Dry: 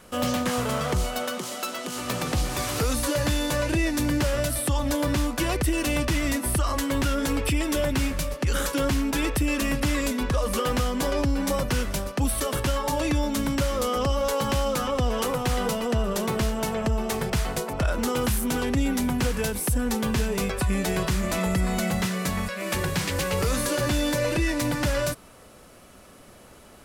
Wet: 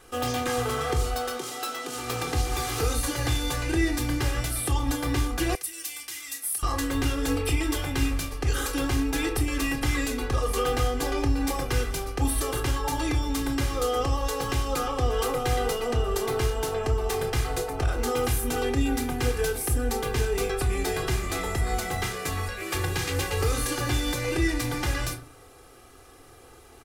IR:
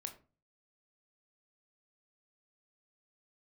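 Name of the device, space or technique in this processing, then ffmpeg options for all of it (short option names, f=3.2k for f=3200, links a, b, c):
microphone above a desk: -filter_complex "[0:a]aecho=1:1:2.5:0.85[a];[1:a]atrim=start_sample=2205[b];[a][b]afir=irnorm=-1:irlink=0,asettb=1/sr,asplit=3[c][d][e];[c]atrim=end=5.554[f];[d]atrim=start=5.55:end=6.63,asetpts=PTS-STARTPTS,afade=t=in:d=0.004:c=qsin,afade=t=out:st=1.076:d=0.004:c=qsin,aderivative[g];[e]atrim=start=6.626[h];[f][g]acrossfade=d=0.004:c1=hsin:c2=qsin[i];[i][h]acrossfade=d=0.004:c1=qsin:c2=hsin"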